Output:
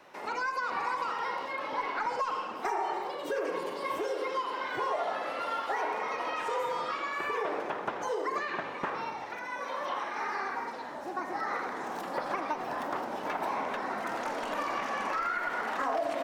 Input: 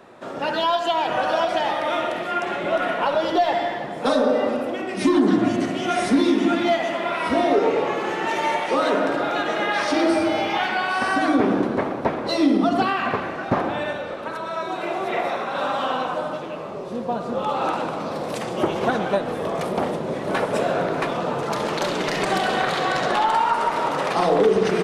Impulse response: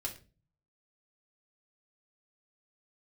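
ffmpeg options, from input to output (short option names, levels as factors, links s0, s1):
-filter_complex "[0:a]asetrate=67473,aresample=44100,acrossover=split=620|2000[s0][s1][s2];[s0]acompressor=threshold=0.0316:ratio=4[s3];[s1]acompressor=threshold=0.0891:ratio=4[s4];[s2]acompressor=threshold=0.00794:ratio=4[s5];[s3][s4][s5]amix=inputs=3:normalize=0,volume=0.376"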